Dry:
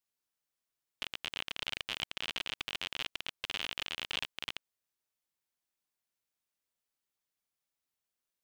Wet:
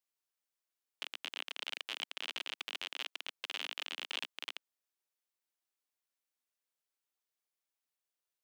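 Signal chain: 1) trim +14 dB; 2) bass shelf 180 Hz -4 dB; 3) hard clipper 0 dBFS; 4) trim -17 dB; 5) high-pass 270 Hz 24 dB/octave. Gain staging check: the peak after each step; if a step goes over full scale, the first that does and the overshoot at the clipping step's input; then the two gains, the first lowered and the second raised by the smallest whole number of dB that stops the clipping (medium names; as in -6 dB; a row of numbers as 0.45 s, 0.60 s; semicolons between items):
-2.0 dBFS, -2.5 dBFS, -2.5 dBFS, -19.5 dBFS, -20.5 dBFS; nothing clips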